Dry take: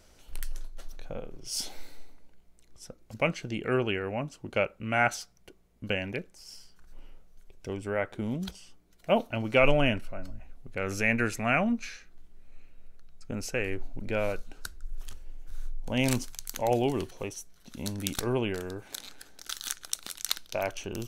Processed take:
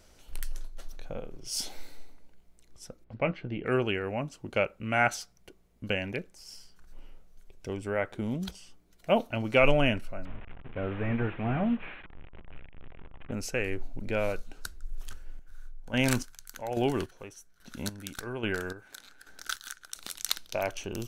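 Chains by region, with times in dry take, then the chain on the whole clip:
0:03.04–0:03.66: high-frequency loss of the air 400 metres + double-tracking delay 16 ms −11 dB
0:10.25–0:13.32: linear delta modulator 16 kbit/s, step −40.5 dBFS + hum removal 170.7 Hz, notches 8
0:15.10–0:19.96: parametric band 1,500 Hz +11 dB 0.48 octaves + square-wave tremolo 1.2 Hz, depth 65%, duty 35%
whole clip: no processing

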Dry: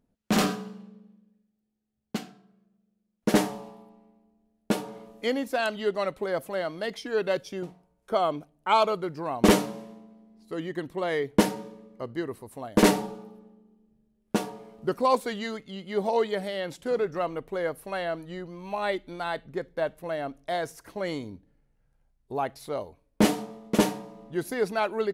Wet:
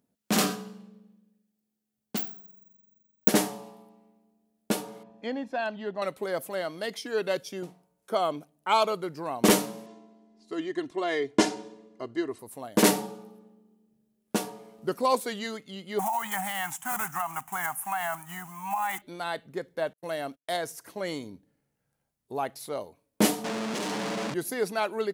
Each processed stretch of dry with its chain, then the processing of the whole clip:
0:02.17–0:03.28: one scale factor per block 7 bits + bad sample-rate conversion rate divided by 2×, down filtered, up zero stuff
0:05.03–0:06.02: head-to-tape spacing loss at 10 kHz 30 dB + comb filter 1.2 ms, depth 44%
0:09.86–0:12.39: low-pass filter 7,600 Hz 24 dB per octave + comb filter 2.9 ms, depth 66%
0:15.99–0:19.02: one scale factor per block 5 bits + drawn EQ curve 210 Hz 0 dB, 520 Hz −29 dB, 760 Hz +15 dB, 2,900 Hz +3 dB, 4,300 Hz −12 dB, 6,700 Hz +8 dB + downward compressor 5 to 1, threshold −24 dBFS
0:19.93–0:20.57: noise gate −47 dBFS, range −41 dB + high-shelf EQ 3,500 Hz +7.5 dB
0:23.44–0:24.34: sign of each sample alone + high-pass filter 140 Hz 24 dB per octave + high-frequency loss of the air 89 metres
whole clip: high-pass filter 130 Hz 12 dB per octave; high-shelf EQ 5,500 Hz +10.5 dB; level −2 dB

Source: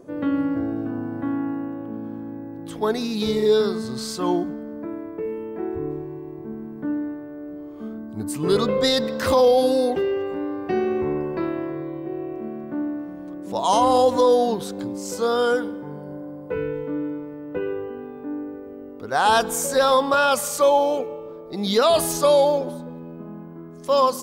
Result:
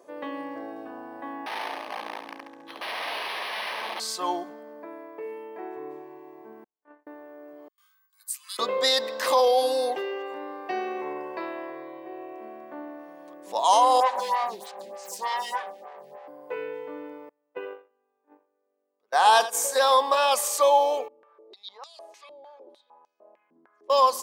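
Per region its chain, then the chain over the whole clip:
0:01.46–0:04.00: wrap-around overflow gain 26 dB + repeating echo 69 ms, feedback 59%, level −6.5 dB + linearly interpolated sample-rate reduction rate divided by 6×
0:06.64–0:07.07: resonant band-pass 1,200 Hz, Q 0.68 + noise gate −32 dBFS, range −46 dB
0:07.68–0:08.59: Butterworth high-pass 1,100 Hz 48 dB per octave + noise gate with hold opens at −50 dBFS, closes at −53 dBFS + first difference
0:14.00–0:16.28: lower of the sound and its delayed copy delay 5.2 ms + phaser with staggered stages 3.3 Hz
0:17.29–0:19.84: noise gate −27 dBFS, range −31 dB + single-tap delay 83 ms −14 dB
0:21.08–0:23.90: downward compressor 2 to 1, threshold −34 dBFS + band-pass on a step sequencer 6.6 Hz 240–5,800 Hz
whole clip: Chebyshev high-pass filter 760 Hz, order 2; notch filter 1,400 Hz, Q 5.2; level +1 dB

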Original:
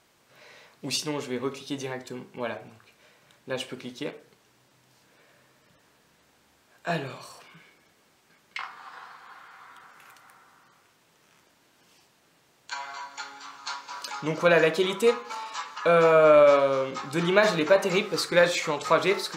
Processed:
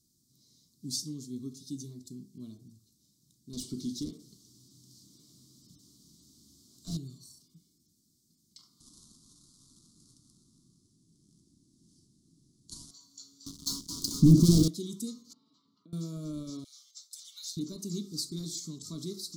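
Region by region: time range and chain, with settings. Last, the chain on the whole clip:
0:03.53–0:06.97: low-shelf EQ 120 Hz +11 dB + mid-hump overdrive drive 24 dB, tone 3,000 Hz, clips at −14.5 dBFS
0:08.80–0:12.91: each half-wave held at its own peak + Butterworth low-pass 11,000 Hz 72 dB per octave + tilt shelving filter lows +3 dB, about 1,400 Hz
0:13.46–0:14.68: tilt shelving filter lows +8 dB, about 1,100 Hz + leveller curve on the samples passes 5
0:15.33–0:15.93: downward compressor, threshold −33 dBFS + band-pass filter 140–8,000 Hz + high-frequency loss of the air 490 metres
0:16.64–0:17.57: inverse Chebyshev high-pass filter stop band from 360 Hz, stop band 70 dB + downward expander −44 dBFS + comb filter 6.9 ms, depth 79%
whole clip: inverse Chebyshev band-stop filter 510–2,700 Hz, stop band 40 dB; flat-topped bell 870 Hz +8 dB 1.3 octaves; level −3 dB

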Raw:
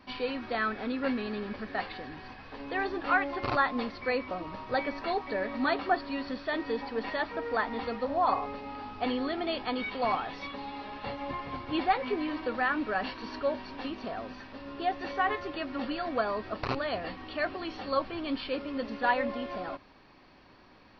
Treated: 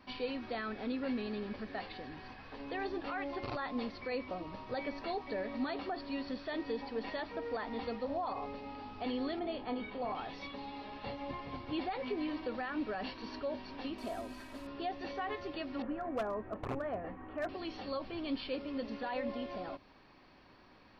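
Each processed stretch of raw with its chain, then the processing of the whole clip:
0:09.39–0:10.15: low-pass filter 1,300 Hz 6 dB per octave + flutter between parallel walls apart 4.9 metres, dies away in 0.2 s
0:13.98–0:14.67: variable-slope delta modulation 64 kbit/s + comb filter 3.1 ms, depth 53%
0:15.82–0:17.49: low-pass filter 1,800 Hz 24 dB per octave + hum removal 117.4 Hz, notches 3 + gain into a clipping stage and back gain 24.5 dB
whole clip: brickwall limiter −23.5 dBFS; dynamic equaliser 1,400 Hz, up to −6 dB, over −48 dBFS, Q 1.1; level −3.5 dB

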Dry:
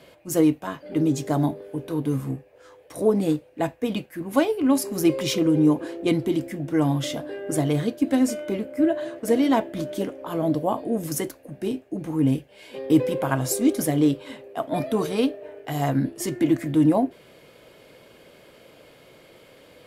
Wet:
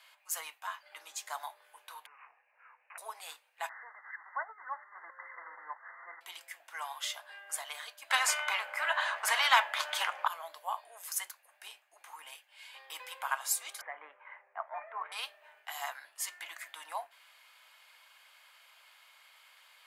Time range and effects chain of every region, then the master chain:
0:02.06–0:02.98: downward compressor 2.5 to 1, threshold −31 dBFS + bad sample-rate conversion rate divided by 8×, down none, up filtered
0:03.69–0:06.21: spike at every zero crossing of −15.5 dBFS + transient designer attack −5 dB, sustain −10 dB + linear-phase brick-wall low-pass 2,100 Hz
0:08.10–0:10.28: low-pass filter 2,800 Hz 6 dB per octave + parametric band 260 Hz +10 dB 3 octaves + every bin compressed towards the loudest bin 2 to 1
0:13.81–0:15.12: elliptic low-pass filter 2,100 Hz, stop band 60 dB + low-shelf EQ 380 Hz +11.5 dB
whole clip: Butterworth high-pass 890 Hz 36 dB per octave; notch filter 5,600 Hz, Q 20; level −4 dB

